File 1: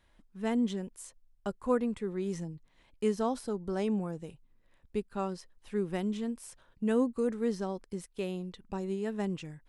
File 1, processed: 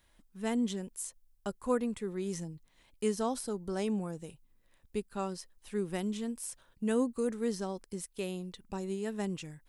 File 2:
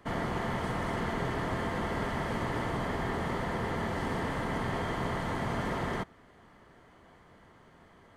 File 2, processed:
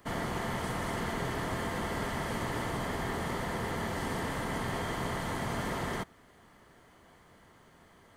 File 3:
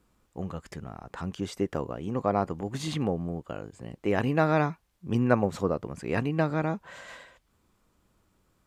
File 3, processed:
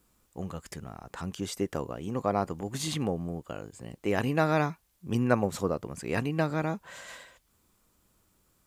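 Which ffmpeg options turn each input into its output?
-af "crystalizer=i=2:c=0,volume=-2dB"

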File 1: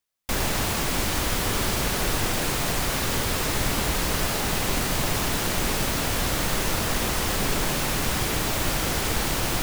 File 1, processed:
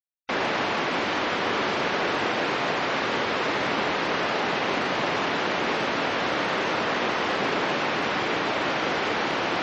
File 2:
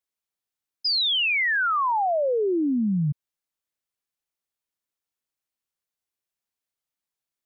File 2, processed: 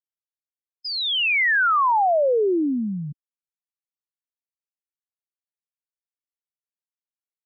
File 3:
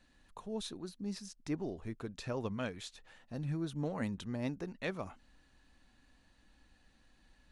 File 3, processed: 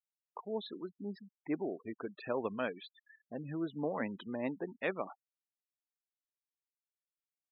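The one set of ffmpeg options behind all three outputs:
-af "highpass=300,lowpass=2.8k,afftfilt=real='re*gte(hypot(re,im),0.00501)':imag='im*gte(hypot(re,im),0.00501)':win_size=1024:overlap=0.75,volume=4.5dB"

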